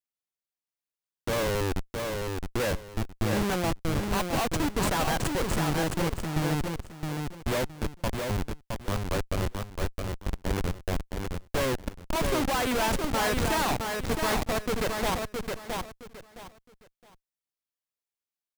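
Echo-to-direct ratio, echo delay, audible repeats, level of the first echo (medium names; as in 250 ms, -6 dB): -4.0 dB, 666 ms, 3, -4.5 dB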